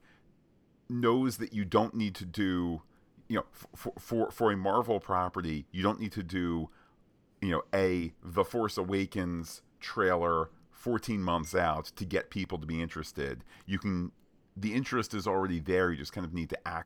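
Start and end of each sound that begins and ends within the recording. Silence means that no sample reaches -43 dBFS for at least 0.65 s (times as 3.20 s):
0.90–6.66 s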